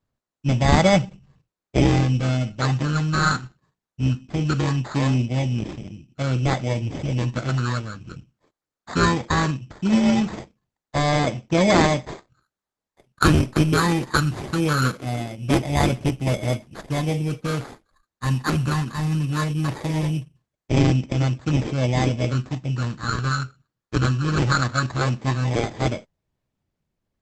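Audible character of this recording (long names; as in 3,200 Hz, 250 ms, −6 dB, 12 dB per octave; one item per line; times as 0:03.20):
phaser sweep stages 12, 0.2 Hz, lowest notch 600–1,600 Hz
aliases and images of a low sample rate 2,800 Hz, jitter 0%
Opus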